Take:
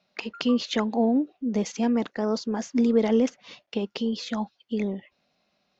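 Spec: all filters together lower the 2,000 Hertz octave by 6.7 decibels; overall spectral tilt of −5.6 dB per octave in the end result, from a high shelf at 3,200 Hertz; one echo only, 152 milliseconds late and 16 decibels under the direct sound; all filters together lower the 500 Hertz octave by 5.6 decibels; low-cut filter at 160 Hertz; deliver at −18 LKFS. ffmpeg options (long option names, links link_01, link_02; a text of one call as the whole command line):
ffmpeg -i in.wav -af "highpass=160,equalizer=frequency=500:width_type=o:gain=-6,equalizer=frequency=2000:width_type=o:gain=-6,highshelf=frequency=3200:gain=-6.5,aecho=1:1:152:0.158,volume=11dB" out.wav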